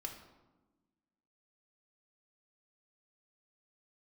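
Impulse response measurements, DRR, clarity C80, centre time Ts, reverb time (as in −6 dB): 2.5 dB, 9.5 dB, 26 ms, 1.2 s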